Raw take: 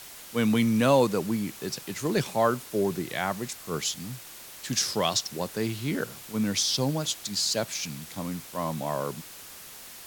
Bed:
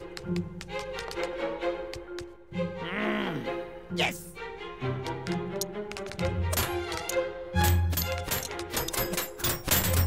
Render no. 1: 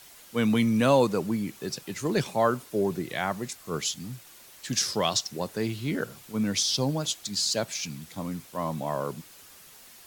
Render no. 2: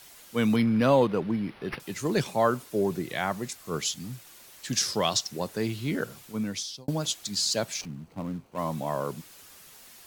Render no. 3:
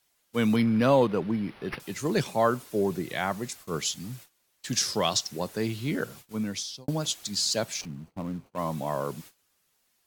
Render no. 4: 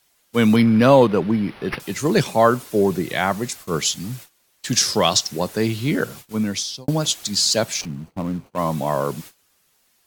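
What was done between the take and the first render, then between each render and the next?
broadband denoise 7 dB, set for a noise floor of −45 dBFS
0:00.56–0:01.80: linearly interpolated sample-rate reduction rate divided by 6×; 0:06.20–0:06.88: fade out; 0:07.81–0:08.58: running median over 25 samples
noise gate −46 dBFS, range −21 dB
level +8.5 dB

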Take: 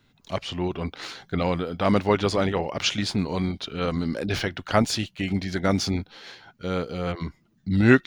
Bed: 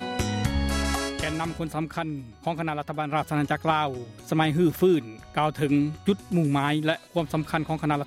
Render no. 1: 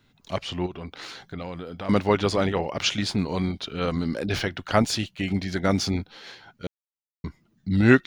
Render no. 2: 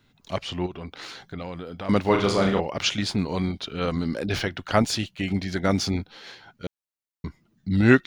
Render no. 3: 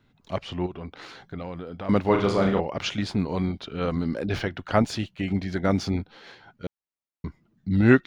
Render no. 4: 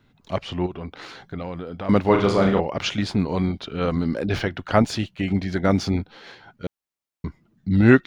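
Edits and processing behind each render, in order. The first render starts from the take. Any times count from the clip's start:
0:00.66–0:01.89: downward compressor 2.5 to 1, threshold −35 dBFS; 0:06.67–0:07.24: silence
0:02.01–0:02.60: flutter between parallel walls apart 6.1 metres, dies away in 0.45 s
high-shelf EQ 3,000 Hz −10.5 dB
level +3.5 dB; brickwall limiter −2 dBFS, peak gain reduction 1.5 dB

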